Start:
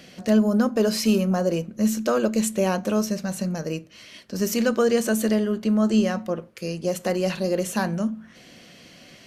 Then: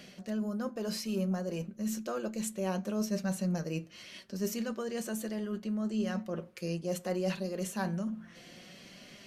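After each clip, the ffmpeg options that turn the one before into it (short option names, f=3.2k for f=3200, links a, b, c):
-af "areverse,acompressor=threshold=-28dB:ratio=6,areverse,flanger=delay=4.8:depth=1.1:regen=53:speed=0.66:shape=triangular"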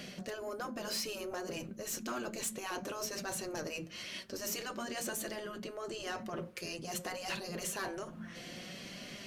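-af "afftfilt=real='re*lt(hypot(re,im),0.0794)':imag='im*lt(hypot(re,im),0.0794)':win_size=1024:overlap=0.75,asoftclip=type=tanh:threshold=-36.5dB,volume=5.5dB"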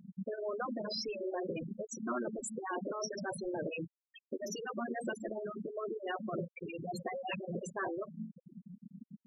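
-filter_complex "[0:a]asplit=2[a][b];[b]acrusher=samples=10:mix=1:aa=0.000001,volume=-10dB[c];[a][c]amix=inputs=2:normalize=0,afftfilt=real='re*gte(hypot(re,im),0.0398)':imag='im*gte(hypot(re,im),0.0398)':win_size=1024:overlap=0.75,volume=2dB"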